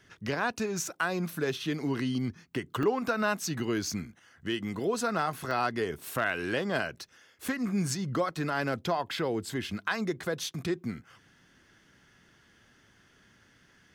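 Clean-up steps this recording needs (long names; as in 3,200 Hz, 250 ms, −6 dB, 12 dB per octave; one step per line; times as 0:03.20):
clipped peaks rebuilt −17 dBFS
repair the gap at 0:02.83/0:05.51/0:06.98/0:07.48, 4 ms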